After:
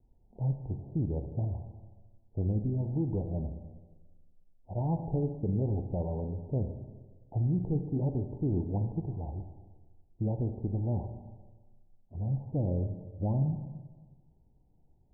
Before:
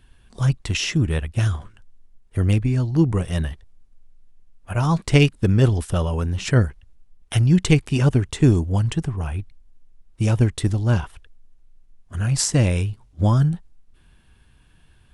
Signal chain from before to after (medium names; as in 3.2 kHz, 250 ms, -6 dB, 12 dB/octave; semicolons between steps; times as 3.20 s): steep low-pass 880 Hz 96 dB/octave; bass shelf 130 Hz -4.5 dB; peak limiter -14.5 dBFS, peak gain reduction 7.5 dB; Schroeder reverb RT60 1.4 s, combs from 30 ms, DRR 6.5 dB; trim -8.5 dB